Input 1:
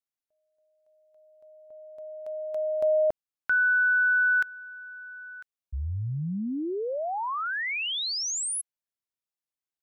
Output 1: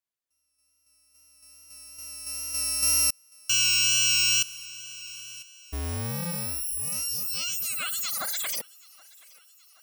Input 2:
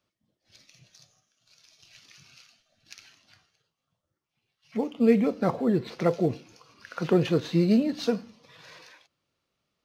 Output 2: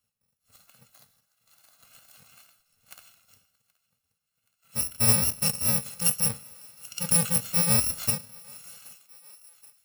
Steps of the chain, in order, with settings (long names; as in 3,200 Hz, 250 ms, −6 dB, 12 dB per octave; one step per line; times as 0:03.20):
samples in bit-reversed order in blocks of 128 samples
tape wow and flutter 26 cents
feedback echo with a high-pass in the loop 775 ms, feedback 62%, high-pass 530 Hz, level −24 dB